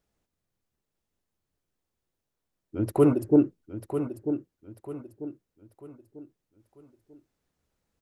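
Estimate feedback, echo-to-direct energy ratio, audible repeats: 37%, −9.0 dB, 3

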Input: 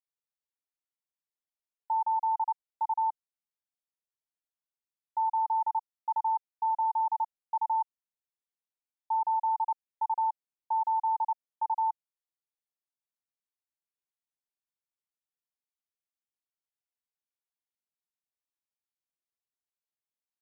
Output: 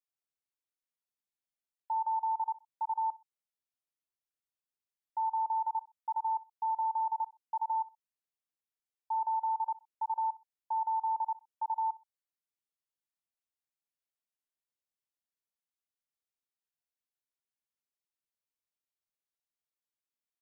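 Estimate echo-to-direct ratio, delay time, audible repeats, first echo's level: −20.5 dB, 63 ms, 2, −21.0 dB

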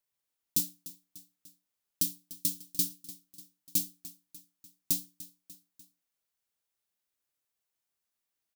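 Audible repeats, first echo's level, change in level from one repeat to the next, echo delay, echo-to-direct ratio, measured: 3, −17.0 dB, −5.0 dB, 296 ms, −15.5 dB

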